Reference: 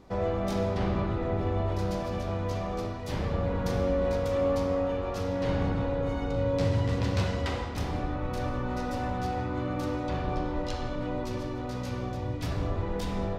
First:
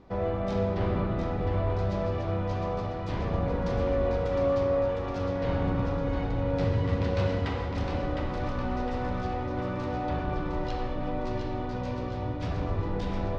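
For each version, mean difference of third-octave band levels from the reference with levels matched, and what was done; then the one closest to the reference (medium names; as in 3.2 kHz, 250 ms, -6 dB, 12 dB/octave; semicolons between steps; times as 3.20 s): 3.0 dB: distance through air 150 m; two-band feedback delay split 480 Hz, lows 224 ms, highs 709 ms, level -5.5 dB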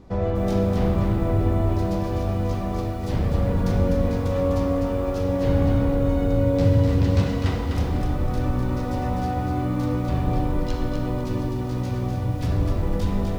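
4.5 dB: bass shelf 340 Hz +9.5 dB; bit-crushed delay 251 ms, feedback 35%, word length 8-bit, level -5 dB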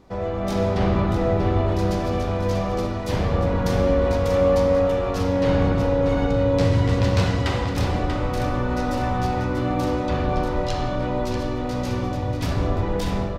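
1.5 dB: level rider gain up to 6 dB; on a send: delay 638 ms -8 dB; on the sum: trim +1.5 dB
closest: third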